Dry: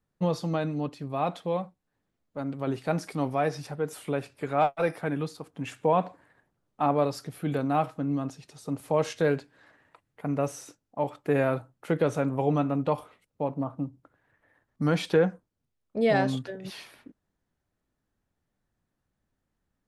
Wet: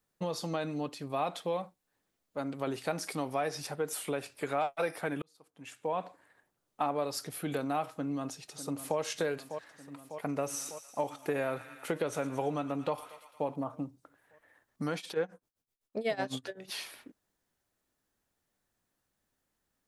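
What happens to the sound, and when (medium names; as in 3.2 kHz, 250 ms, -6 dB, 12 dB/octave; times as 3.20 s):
5.22–6.91 s: fade in
7.88–8.98 s: echo throw 600 ms, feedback 70%, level -14 dB
10.33–13.56 s: feedback echo behind a high-pass 114 ms, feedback 68%, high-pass 1.4 kHz, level -14 dB
14.96–16.72 s: tremolo 7.9 Hz, depth 92%
whole clip: treble shelf 4 kHz +11.5 dB; compression, threshold -27 dBFS; tone controls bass -8 dB, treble -2 dB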